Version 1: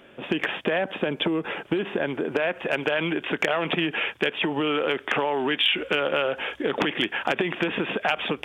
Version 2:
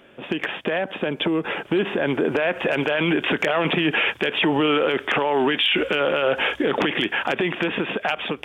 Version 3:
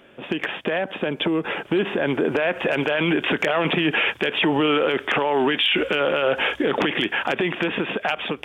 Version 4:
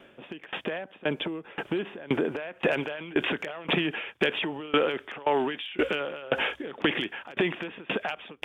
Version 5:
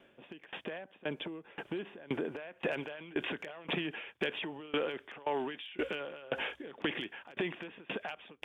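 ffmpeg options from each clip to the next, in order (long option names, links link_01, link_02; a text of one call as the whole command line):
ffmpeg -i in.wav -af "dynaudnorm=framelen=390:gausssize=9:maxgain=11.5dB,alimiter=limit=-12dB:level=0:latency=1:release=15" out.wav
ffmpeg -i in.wav -af anull out.wav
ffmpeg -i in.wav -af "aeval=exprs='val(0)*pow(10,-24*if(lt(mod(1.9*n/s,1),2*abs(1.9)/1000),1-mod(1.9*n/s,1)/(2*abs(1.9)/1000),(mod(1.9*n/s,1)-2*abs(1.9)/1000)/(1-2*abs(1.9)/1000))/20)':channel_layout=same" out.wav
ffmpeg -i in.wav -af "bandreject=frequency=1300:width=20,volume=-9dB" out.wav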